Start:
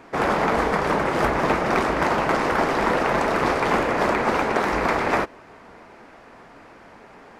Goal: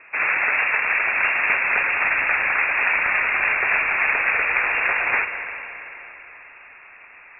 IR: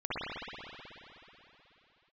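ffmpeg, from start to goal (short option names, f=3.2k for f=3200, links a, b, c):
-filter_complex "[0:a]lowpass=f=2.4k:t=q:w=0.5098,lowpass=f=2.4k:t=q:w=0.6013,lowpass=f=2.4k:t=q:w=0.9,lowpass=f=2.4k:t=q:w=2.563,afreqshift=-2800,asplit=2[a][b];[1:a]atrim=start_sample=2205,adelay=80[c];[b][c]afir=irnorm=-1:irlink=0,volume=-16dB[d];[a][d]amix=inputs=2:normalize=0,asubboost=boost=2.5:cutoff=100"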